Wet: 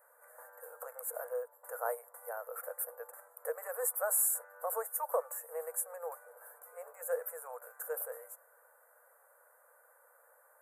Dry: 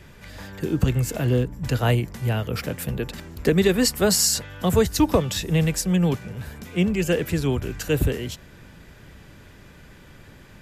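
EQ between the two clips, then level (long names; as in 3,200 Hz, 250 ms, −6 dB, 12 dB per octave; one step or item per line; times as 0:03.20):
linear-phase brick-wall high-pass 460 Hz
elliptic band-stop filter 1,400–9,200 Hz, stop band 80 dB
high-shelf EQ 8,400 Hz +10.5 dB
−8.5 dB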